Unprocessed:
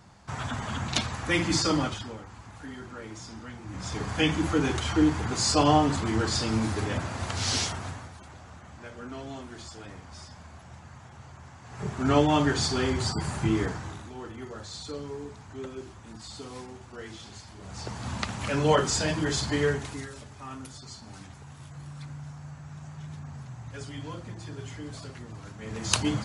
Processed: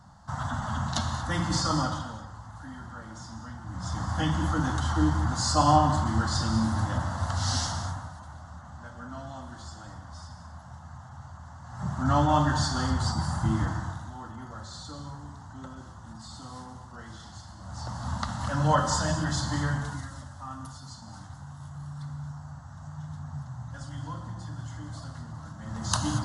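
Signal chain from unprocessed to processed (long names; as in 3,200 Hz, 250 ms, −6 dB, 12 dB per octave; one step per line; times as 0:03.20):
high-shelf EQ 6,600 Hz −9.5 dB
phaser with its sweep stopped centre 1,000 Hz, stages 4
on a send: convolution reverb, pre-delay 3 ms, DRR 6 dB
on the sum: level +3 dB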